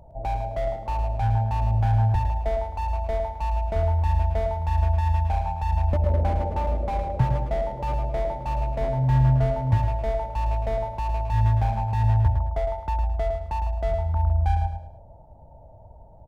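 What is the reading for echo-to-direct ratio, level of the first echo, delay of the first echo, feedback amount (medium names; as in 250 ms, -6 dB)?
-6.5 dB, -7.0 dB, 108 ms, 32%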